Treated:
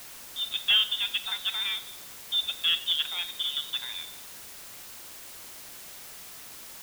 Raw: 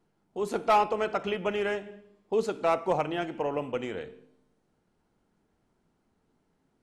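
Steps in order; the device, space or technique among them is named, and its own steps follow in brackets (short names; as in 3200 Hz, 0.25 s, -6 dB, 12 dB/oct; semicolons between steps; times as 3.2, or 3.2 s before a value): scrambled radio voice (BPF 350–3000 Hz; inverted band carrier 4000 Hz; white noise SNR 12 dB)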